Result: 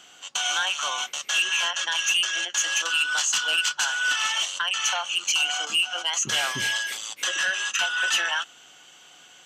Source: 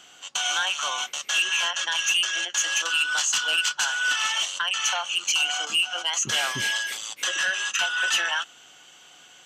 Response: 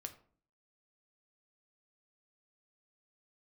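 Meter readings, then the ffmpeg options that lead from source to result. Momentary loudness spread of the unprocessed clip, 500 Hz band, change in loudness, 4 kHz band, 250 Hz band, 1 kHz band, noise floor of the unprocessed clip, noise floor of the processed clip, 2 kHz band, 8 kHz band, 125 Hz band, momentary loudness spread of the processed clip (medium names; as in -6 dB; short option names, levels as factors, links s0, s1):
6 LU, 0.0 dB, 0.0 dB, 0.0 dB, 0.0 dB, 0.0 dB, -51 dBFS, -51 dBFS, 0.0 dB, 0.0 dB, -1.0 dB, 6 LU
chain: -af "bandreject=f=60:t=h:w=6,bandreject=f=120:t=h:w=6"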